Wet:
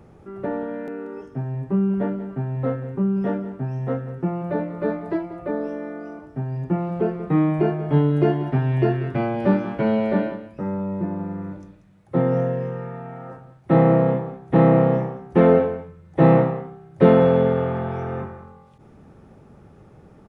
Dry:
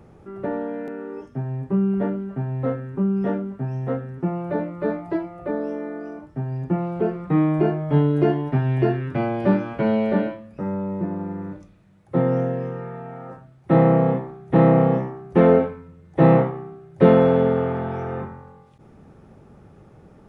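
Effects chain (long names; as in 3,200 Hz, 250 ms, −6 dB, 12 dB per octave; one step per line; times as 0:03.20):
single-tap delay 186 ms −14 dB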